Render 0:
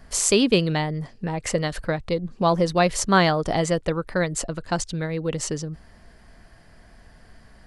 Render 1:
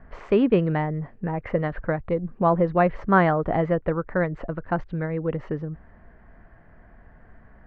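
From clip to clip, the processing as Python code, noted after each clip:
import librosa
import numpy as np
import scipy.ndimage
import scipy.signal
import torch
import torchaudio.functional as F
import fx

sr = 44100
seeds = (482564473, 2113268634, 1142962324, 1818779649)

y = scipy.signal.sosfilt(scipy.signal.butter(4, 1900.0, 'lowpass', fs=sr, output='sos'), x)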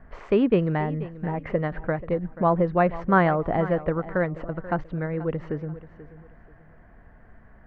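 y = fx.echo_feedback(x, sr, ms=484, feedback_pct=30, wet_db=-16.0)
y = y * librosa.db_to_amplitude(-1.0)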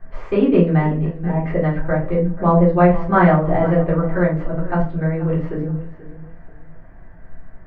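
y = fx.room_shoebox(x, sr, seeds[0], volume_m3=190.0, walls='furnished', distance_m=3.7)
y = y * librosa.db_to_amplitude(-3.5)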